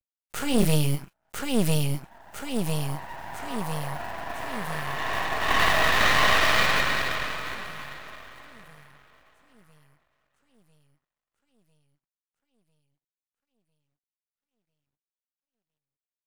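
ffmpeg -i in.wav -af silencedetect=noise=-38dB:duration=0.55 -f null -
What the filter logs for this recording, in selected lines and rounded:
silence_start: 8.80
silence_end: 16.27 | silence_duration: 7.47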